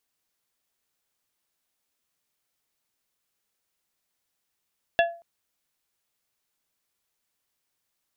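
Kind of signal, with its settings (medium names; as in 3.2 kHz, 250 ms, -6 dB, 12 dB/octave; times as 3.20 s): glass hit plate, length 0.23 s, lowest mode 680 Hz, modes 4, decay 0.37 s, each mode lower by 3.5 dB, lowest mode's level -15 dB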